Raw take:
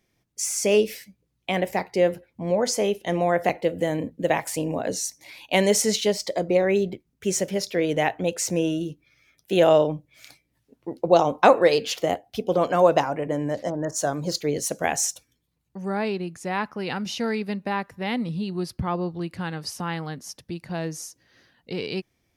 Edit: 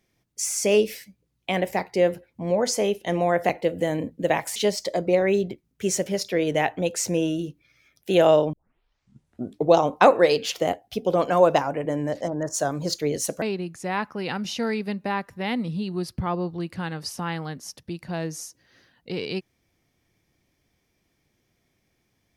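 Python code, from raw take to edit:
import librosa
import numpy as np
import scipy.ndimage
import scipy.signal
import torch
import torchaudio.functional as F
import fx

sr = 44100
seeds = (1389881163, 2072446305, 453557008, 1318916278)

y = fx.edit(x, sr, fx.cut(start_s=4.56, length_s=1.42),
    fx.tape_start(start_s=9.95, length_s=1.23),
    fx.cut(start_s=14.84, length_s=1.19), tone=tone)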